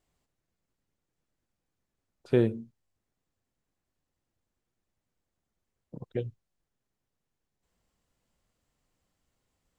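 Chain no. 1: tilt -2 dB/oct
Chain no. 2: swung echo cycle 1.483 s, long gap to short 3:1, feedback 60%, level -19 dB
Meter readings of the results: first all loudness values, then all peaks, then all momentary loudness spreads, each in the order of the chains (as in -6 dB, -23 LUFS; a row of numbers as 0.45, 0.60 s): -26.5, -32.5 LUFS; -8.0, -11.0 dBFS; 20, 26 LU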